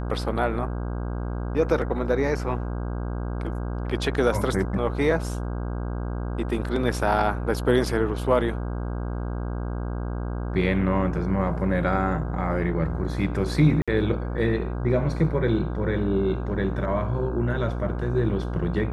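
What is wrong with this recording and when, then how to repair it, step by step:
mains buzz 60 Hz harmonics 27 −29 dBFS
0:13.82–0:13.88: drop-out 56 ms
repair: hum removal 60 Hz, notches 27
repair the gap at 0:13.82, 56 ms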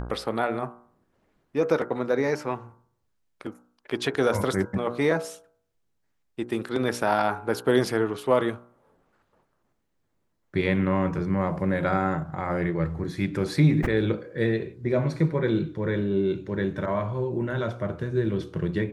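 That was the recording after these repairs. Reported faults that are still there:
none of them is left

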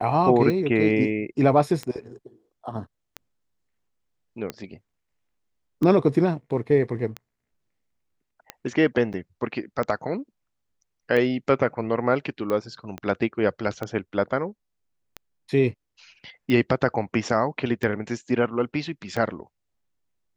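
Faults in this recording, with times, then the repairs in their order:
scratch tick 45 rpm −16 dBFS
0:09.13–0:09.14: drop-out 7.9 ms
0:12.98: click −20 dBFS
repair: click removal
repair the gap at 0:09.13, 7.9 ms

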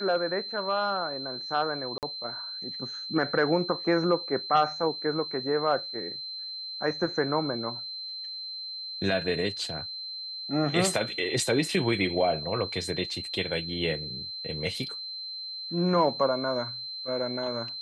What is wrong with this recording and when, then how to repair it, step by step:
whistle 4,100 Hz −35 dBFS
0:01.98–0:02.03: drop-out 48 ms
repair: notch filter 4,100 Hz, Q 30
repair the gap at 0:01.98, 48 ms

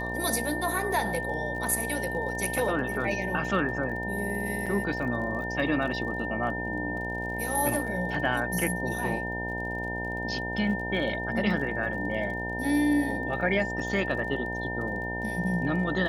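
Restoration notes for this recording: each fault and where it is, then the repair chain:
mains buzz 60 Hz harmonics 16 −35 dBFS
surface crackle 32 per second −38 dBFS
whistle 1,800 Hz −33 dBFS
0:04.66–0:04.67: drop-out 5.9 ms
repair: click removal
hum removal 60 Hz, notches 16
notch filter 1,800 Hz, Q 30
repair the gap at 0:04.66, 5.9 ms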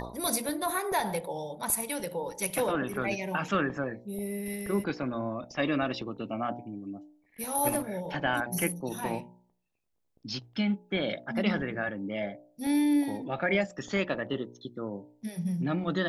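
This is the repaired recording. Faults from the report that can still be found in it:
none of them is left

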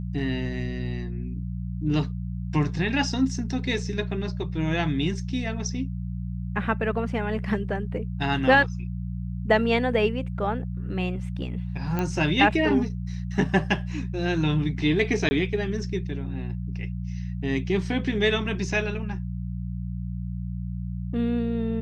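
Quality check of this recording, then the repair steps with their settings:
mains hum 60 Hz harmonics 3 −31 dBFS
0:11.99: click −14 dBFS
0:15.29–0:15.31: drop-out 20 ms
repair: click removal
hum removal 60 Hz, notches 3
repair the gap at 0:15.29, 20 ms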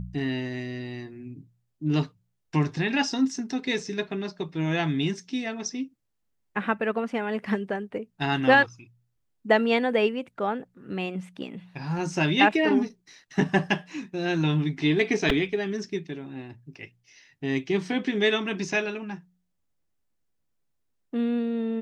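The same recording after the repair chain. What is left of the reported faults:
none of them is left

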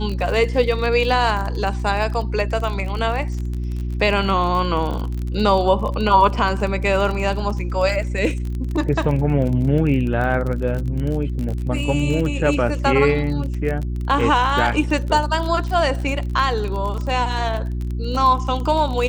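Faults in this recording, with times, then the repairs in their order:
surface crackle 33 per second −25 dBFS
mains hum 60 Hz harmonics 6 −24 dBFS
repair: click removal
hum removal 60 Hz, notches 6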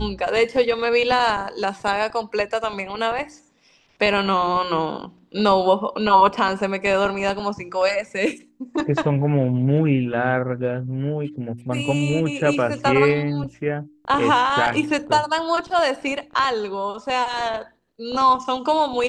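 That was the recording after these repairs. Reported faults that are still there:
none of them is left

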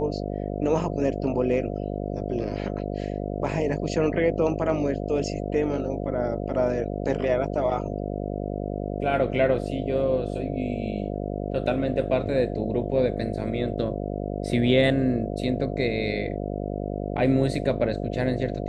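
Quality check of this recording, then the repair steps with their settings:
mains buzz 50 Hz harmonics 14 −30 dBFS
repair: hum removal 50 Hz, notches 14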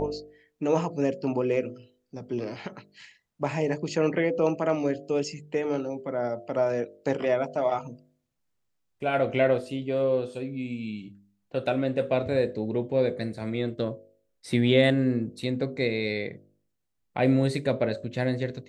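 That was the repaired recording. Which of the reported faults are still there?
none of them is left

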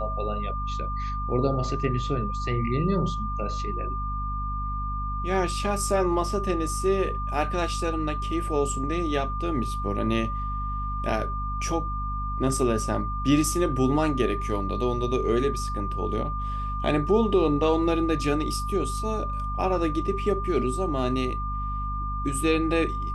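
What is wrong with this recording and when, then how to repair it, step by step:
mains hum 50 Hz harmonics 5 −31 dBFS
whistle 1,200 Hz −31 dBFS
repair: hum removal 50 Hz, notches 5
notch filter 1,200 Hz, Q 30

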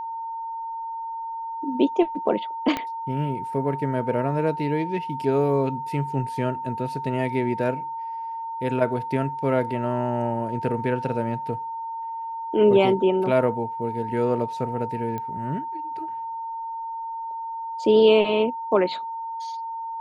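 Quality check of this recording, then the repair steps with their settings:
whistle 910 Hz −29 dBFS
0:02.77: click −12 dBFS
0:15.18: click −19 dBFS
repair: click removal
notch filter 910 Hz, Q 30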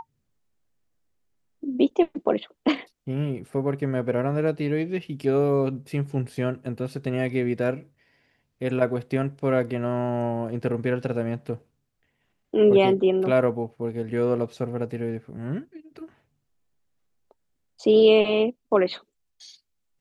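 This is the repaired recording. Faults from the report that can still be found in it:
0:02.77: click

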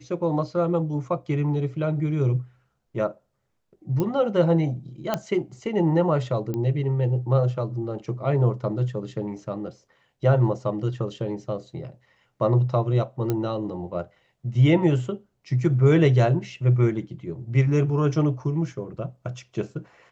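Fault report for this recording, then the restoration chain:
0:04.00: click −14 dBFS
0:05.14: click −10 dBFS
0:06.54: click −18 dBFS
0:13.30: click −12 dBFS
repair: click removal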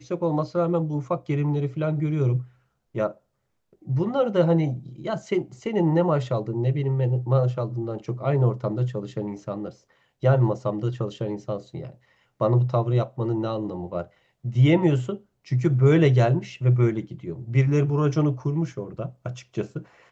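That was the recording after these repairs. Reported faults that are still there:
none of them is left

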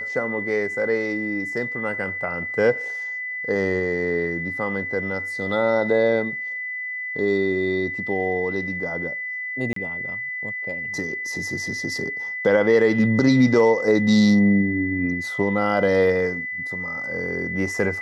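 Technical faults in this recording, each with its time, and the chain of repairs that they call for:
whistle 2,000 Hz −27 dBFS
0:09.73–0:09.76: drop-out 33 ms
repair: notch filter 2,000 Hz, Q 30
repair the gap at 0:09.73, 33 ms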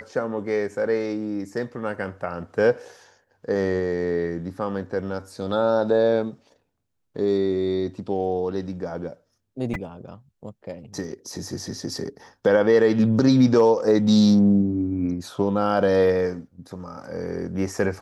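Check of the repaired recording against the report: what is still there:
none of them is left

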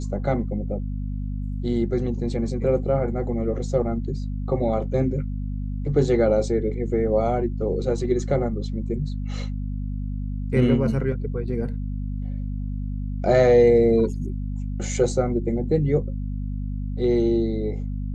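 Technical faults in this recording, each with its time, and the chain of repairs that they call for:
mains hum 50 Hz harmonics 5 −28 dBFS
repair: hum removal 50 Hz, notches 5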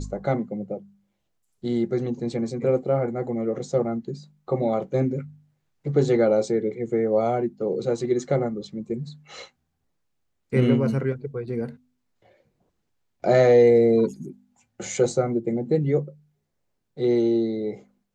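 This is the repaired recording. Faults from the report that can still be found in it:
none of them is left

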